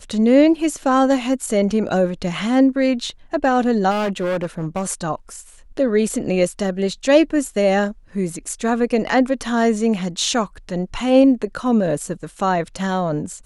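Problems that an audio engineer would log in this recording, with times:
3.90–4.84 s: clipped -18 dBFS

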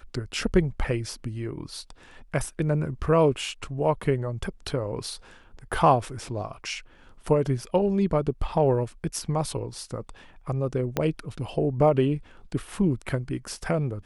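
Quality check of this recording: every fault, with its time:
10.97 s: pop -10 dBFS

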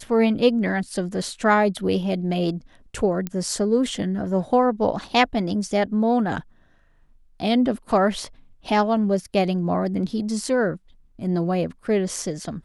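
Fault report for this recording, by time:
3.27 s: pop -14 dBFS

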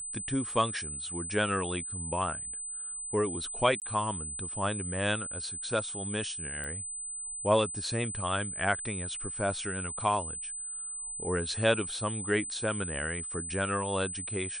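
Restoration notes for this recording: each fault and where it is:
whine 8.1 kHz -36 dBFS
3.80–3.82 s: dropout 18 ms
6.64 s: pop -25 dBFS

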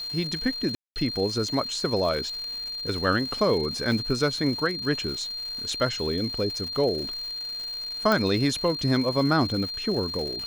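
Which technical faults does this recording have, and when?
crackle 310 per s -34 dBFS
whine 4.2 kHz -31 dBFS
0.75–0.96 s: dropout 209 ms
3.92 s: dropout 2.7 ms
8.12 s: pop -10 dBFS

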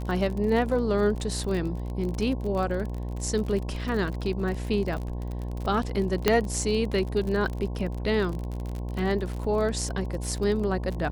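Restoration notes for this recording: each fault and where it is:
buzz 60 Hz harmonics 18 -32 dBFS
crackle 47 per s -31 dBFS
6.28 s: pop -5 dBFS

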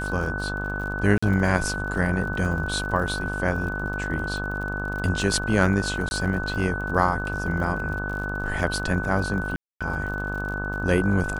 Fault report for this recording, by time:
buzz 50 Hz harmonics 33 -31 dBFS
crackle 51 per s -33 dBFS
whine 1.5 kHz -30 dBFS
1.18–1.23 s: dropout 45 ms
6.09–6.11 s: dropout 21 ms
9.56–9.81 s: dropout 246 ms

